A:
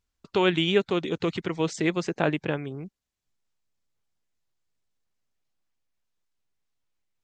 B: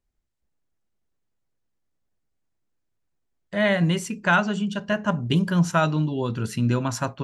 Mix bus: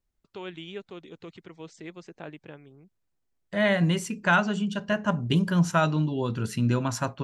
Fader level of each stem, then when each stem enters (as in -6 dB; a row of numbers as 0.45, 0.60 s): -16.5, -2.0 dB; 0.00, 0.00 s